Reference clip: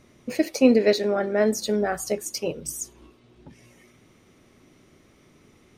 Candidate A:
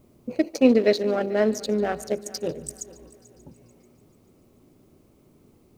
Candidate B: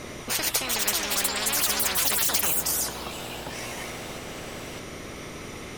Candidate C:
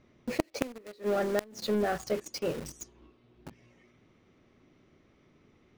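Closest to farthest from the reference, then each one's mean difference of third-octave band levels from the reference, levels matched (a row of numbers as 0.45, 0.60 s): A, C, B; 4.0, 10.0, 18.0 dB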